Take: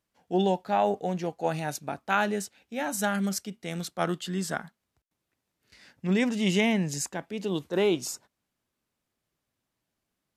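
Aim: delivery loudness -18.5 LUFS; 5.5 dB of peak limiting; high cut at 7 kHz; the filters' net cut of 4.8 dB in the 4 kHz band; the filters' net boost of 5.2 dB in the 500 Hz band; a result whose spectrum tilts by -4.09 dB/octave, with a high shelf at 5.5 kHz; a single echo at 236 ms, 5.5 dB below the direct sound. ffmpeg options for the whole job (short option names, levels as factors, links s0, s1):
-af "lowpass=7000,equalizer=f=500:t=o:g=7,equalizer=f=4000:t=o:g=-3.5,highshelf=f=5500:g=-8.5,alimiter=limit=0.178:level=0:latency=1,aecho=1:1:236:0.531,volume=2.66"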